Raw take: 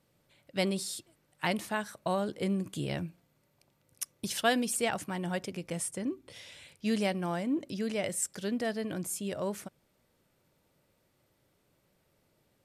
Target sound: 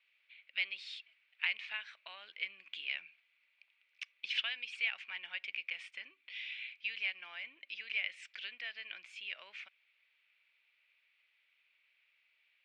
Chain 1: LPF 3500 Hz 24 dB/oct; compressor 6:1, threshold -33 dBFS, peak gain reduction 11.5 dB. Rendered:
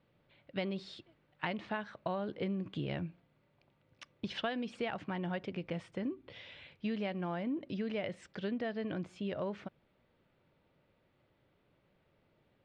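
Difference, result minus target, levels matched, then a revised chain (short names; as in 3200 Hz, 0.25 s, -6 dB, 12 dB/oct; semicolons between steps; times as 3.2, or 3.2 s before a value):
2000 Hz band -8.0 dB
LPF 3500 Hz 24 dB/oct; compressor 6:1, threshold -33 dBFS, peak gain reduction 11.5 dB; resonant high-pass 2400 Hz, resonance Q 4.9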